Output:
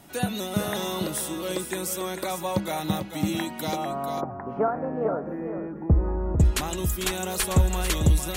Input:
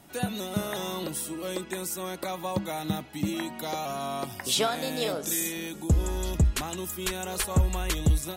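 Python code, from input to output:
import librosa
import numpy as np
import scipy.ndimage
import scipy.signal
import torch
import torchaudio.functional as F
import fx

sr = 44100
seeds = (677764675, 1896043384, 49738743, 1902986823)

y = fx.cheby2_lowpass(x, sr, hz=3400.0, order=4, stop_db=50, at=(3.75, 6.39), fade=0.02)
y = y + 10.0 ** (-8.5 / 20.0) * np.pad(y, (int(446 * sr / 1000.0), 0))[:len(y)]
y = y * librosa.db_to_amplitude(3.0)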